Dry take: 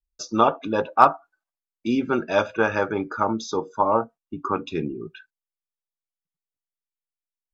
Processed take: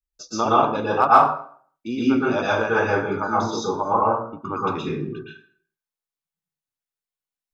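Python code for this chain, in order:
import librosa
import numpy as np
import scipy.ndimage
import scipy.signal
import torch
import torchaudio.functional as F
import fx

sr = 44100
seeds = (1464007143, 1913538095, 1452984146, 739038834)

y = fx.rev_plate(x, sr, seeds[0], rt60_s=0.52, hf_ratio=0.75, predelay_ms=105, drr_db=-7.5)
y = y * 10.0 ** (-5.5 / 20.0)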